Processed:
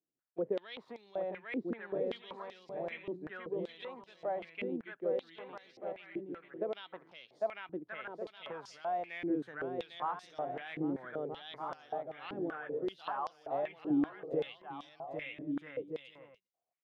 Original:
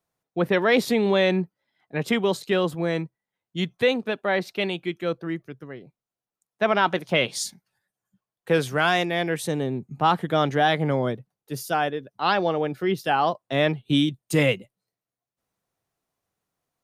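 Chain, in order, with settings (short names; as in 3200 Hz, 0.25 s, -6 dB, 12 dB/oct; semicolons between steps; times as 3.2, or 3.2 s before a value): high shelf 4100 Hz -6 dB; bouncing-ball echo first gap 0.8 s, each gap 0.6×, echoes 5; compressor, threshold -21 dBFS, peak gain reduction 7 dB; tilt -2 dB/oct; stepped band-pass 5.2 Hz 310–5200 Hz; gain -4.5 dB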